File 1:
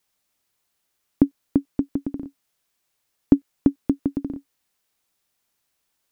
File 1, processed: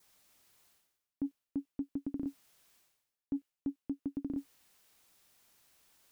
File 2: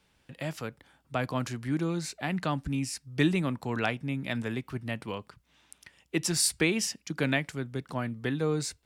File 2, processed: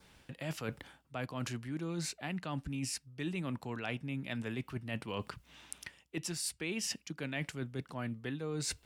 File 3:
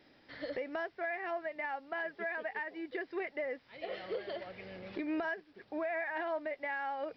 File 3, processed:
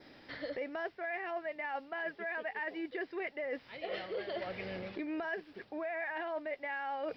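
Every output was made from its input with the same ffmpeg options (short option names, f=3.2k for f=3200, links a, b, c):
-af "adynamicequalizer=threshold=0.00251:dfrequency=2800:dqfactor=4.2:tfrequency=2800:tqfactor=4.2:attack=5:release=100:ratio=0.375:range=2.5:mode=boostabove:tftype=bell,areverse,acompressor=threshold=-42dB:ratio=12,areverse,volume=7dB"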